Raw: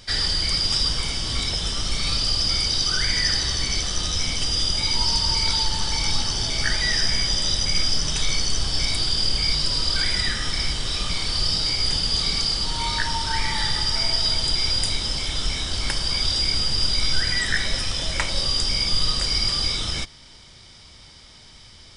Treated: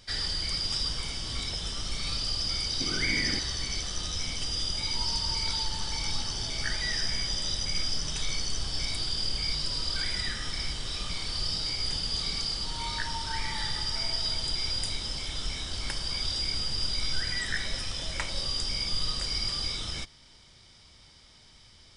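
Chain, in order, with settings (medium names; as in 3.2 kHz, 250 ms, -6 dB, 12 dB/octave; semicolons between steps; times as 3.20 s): 2.80–3.39 s: small resonant body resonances 270/2200 Hz, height 15 dB, ringing for 20 ms; trim -8.5 dB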